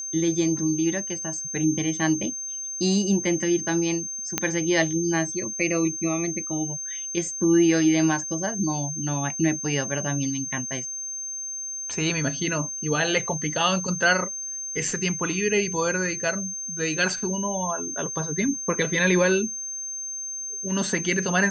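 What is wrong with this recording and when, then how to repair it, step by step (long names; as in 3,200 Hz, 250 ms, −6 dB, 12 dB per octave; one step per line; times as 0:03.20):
whistle 6,300 Hz −30 dBFS
0:04.38: click −5 dBFS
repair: click removal
notch filter 6,300 Hz, Q 30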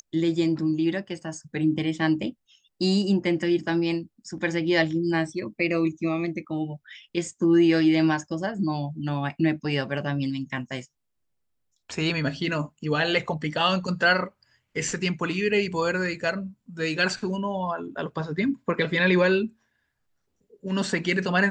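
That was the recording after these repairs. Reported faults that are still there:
none of them is left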